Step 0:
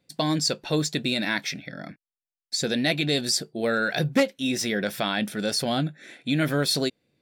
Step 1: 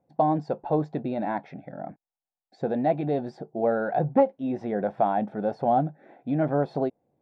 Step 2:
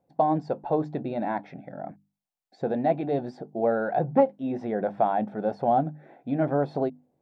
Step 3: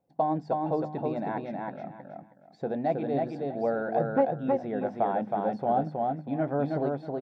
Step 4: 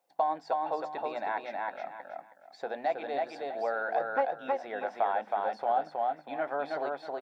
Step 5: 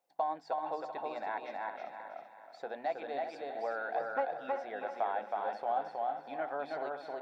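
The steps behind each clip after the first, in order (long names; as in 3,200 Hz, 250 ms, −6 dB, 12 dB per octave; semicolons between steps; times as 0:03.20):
low-pass with resonance 800 Hz, resonance Q 4.9; level −2.5 dB
mains-hum notches 50/100/150/200/250/300 Hz
repeating echo 319 ms, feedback 23%, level −3 dB; level −4 dB
high-pass filter 950 Hz 12 dB per octave; in parallel at 0 dB: downward compressor, threshold −41 dBFS, peak gain reduction 13.5 dB; on the sum: level +2.5 dB
feedback echo with a high-pass in the loop 384 ms, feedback 38%, high-pass 180 Hz, level −10 dB; level −5 dB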